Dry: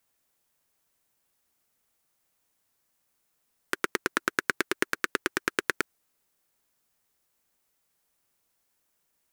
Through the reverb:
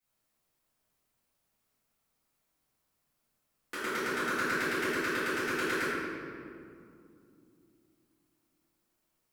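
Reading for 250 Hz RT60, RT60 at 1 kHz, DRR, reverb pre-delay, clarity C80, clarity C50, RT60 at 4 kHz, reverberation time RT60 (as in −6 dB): 3.9 s, 2.3 s, −16.0 dB, 3 ms, −2.0 dB, −4.0 dB, 1.3 s, 2.5 s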